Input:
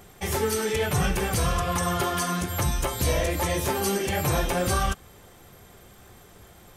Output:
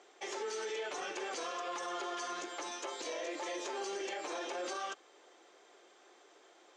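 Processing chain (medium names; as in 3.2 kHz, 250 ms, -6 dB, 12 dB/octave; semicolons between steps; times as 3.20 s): Chebyshev band-pass 320–6900 Hz, order 4; peak limiter -23.5 dBFS, peak gain reduction 8 dB; trim -7.5 dB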